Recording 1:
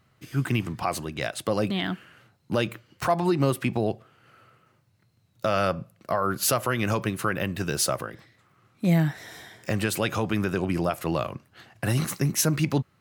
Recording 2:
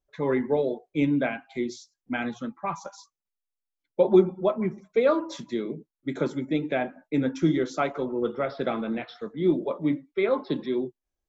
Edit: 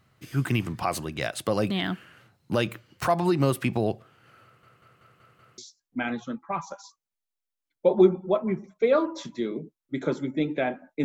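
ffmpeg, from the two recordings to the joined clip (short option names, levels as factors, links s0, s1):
-filter_complex "[0:a]apad=whole_dur=11.04,atrim=end=11.04,asplit=6[s0][s1][s2][s3][s4][s5];[s0]atrim=end=4.632[s6];[s1]atrim=start=4.438:end=4.632[s7];[s2]atrim=start=4.438:end=4.632[s8];[s3]atrim=start=4.438:end=4.632[s9];[s4]atrim=start=4.438:end=4.632[s10];[s5]atrim=start=4.438:end=4.632[s11];[1:a]atrim=start=1.718:end=7.18[s12];[s6][s7]acrossfade=d=0.004:c1=hsin:c2=hsin[s13];[s13][s8]acrossfade=d=0.004:c1=hsin:c2=hsin[s14];[s14][s9]acrossfade=d=0.004:c1=hsin:c2=hsin[s15];[s15][s10]acrossfade=d=0.004:c1=hsin:c2=hsin[s16];[s16][s11]acrossfade=d=0.004:c1=hsin:c2=hsin[s17];[s17][s12]acrossfade=d=0.004:c1=hsin:c2=hsin"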